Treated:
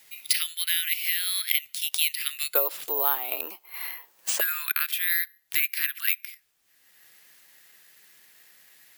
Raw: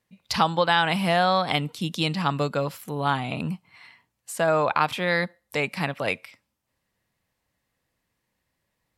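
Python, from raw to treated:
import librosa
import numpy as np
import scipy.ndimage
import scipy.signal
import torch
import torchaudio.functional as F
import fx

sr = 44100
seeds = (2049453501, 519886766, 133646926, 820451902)

y = fx.ellip_highpass(x, sr, hz=fx.steps((0.0, 2000.0), (2.54, 360.0), (4.39, 1600.0)), order=4, stop_db=60)
y = fx.rider(y, sr, range_db=10, speed_s=0.5)
y = (np.kron(y[::3], np.eye(3)[0]) * 3)[:len(y)]
y = fx.band_squash(y, sr, depth_pct=70)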